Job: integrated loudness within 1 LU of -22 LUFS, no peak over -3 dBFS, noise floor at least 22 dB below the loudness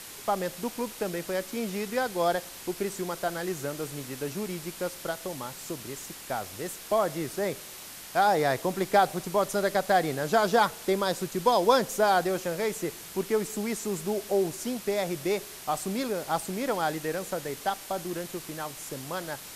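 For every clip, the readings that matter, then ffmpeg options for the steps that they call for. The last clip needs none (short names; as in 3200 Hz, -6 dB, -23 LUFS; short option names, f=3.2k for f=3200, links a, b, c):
noise floor -44 dBFS; noise floor target -51 dBFS; loudness -29.0 LUFS; peak -8.0 dBFS; loudness target -22.0 LUFS
-> -af "afftdn=nr=7:nf=-44"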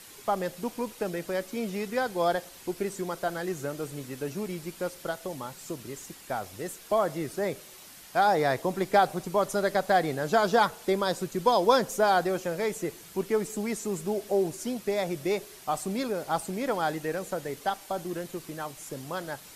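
noise floor -49 dBFS; noise floor target -52 dBFS
-> -af "afftdn=nr=6:nf=-49"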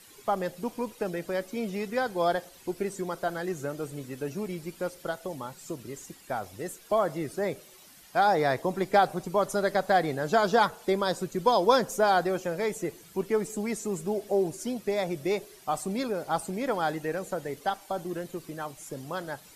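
noise floor -53 dBFS; loudness -29.5 LUFS; peak -8.0 dBFS; loudness target -22.0 LUFS
-> -af "volume=7.5dB,alimiter=limit=-3dB:level=0:latency=1"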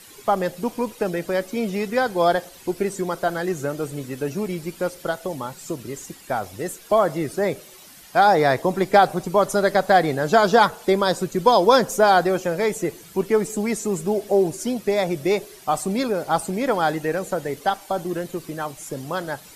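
loudness -22.0 LUFS; peak -3.0 dBFS; noise floor -46 dBFS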